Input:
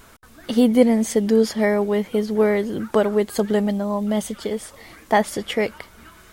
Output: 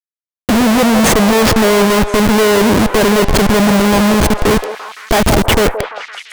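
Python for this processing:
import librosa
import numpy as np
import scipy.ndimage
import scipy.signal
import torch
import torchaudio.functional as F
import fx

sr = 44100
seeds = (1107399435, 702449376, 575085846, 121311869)

y = fx.leveller(x, sr, passes=3)
y = fx.schmitt(y, sr, flips_db=-15.5)
y = fx.echo_stepped(y, sr, ms=171, hz=650.0, octaves=0.7, feedback_pct=70, wet_db=-4.5)
y = y * 10.0 ** (2.5 / 20.0)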